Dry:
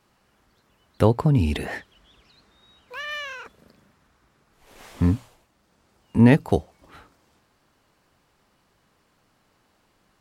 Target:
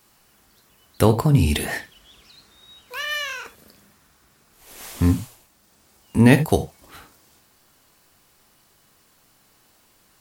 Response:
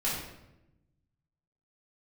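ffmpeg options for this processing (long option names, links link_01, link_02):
-filter_complex "[0:a]aemphasis=mode=production:type=75kf,asplit=2[link_01][link_02];[1:a]atrim=start_sample=2205,atrim=end_sample=3969[link_03];[link_02][link_03]afir=irnorm=-1:irlink=0,volume=-13dB[link_04];[link_01][link_04]amix=inputs=2:normalize=0"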